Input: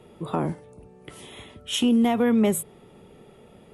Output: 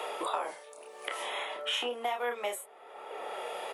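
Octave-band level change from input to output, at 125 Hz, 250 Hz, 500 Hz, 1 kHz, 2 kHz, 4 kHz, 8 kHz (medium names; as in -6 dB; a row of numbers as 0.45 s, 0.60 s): under -35 dB, -28.5 dB, -7.5 dB, -1.5 dB, +0.5 dB, -2.5 dB, -10.5 dB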